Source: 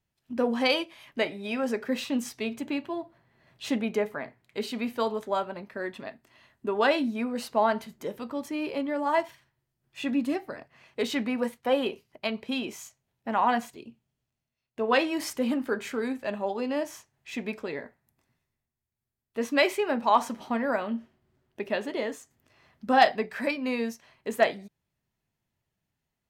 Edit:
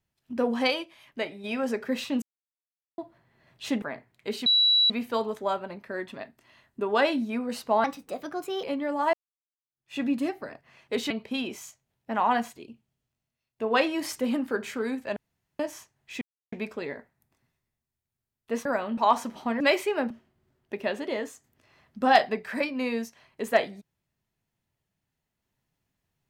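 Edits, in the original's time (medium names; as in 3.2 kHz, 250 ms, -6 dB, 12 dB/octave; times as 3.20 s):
0.70–1.44 s: gain -4 dB
2.22–2.98 s: mute
3.82–4.12 s: delete
4.76 s: add tone 3.92 kHz -17.5 dBFS 0.44 s
7.70–8.70 s: speed 126%
9.20–10.04 s: fade in exponential
11.17–12.28 s: delete
16.34–16.77 s: room tone
17.39 s: insert silence 0.31 s
19.52–20.02 s: swap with 20.65–20.97 s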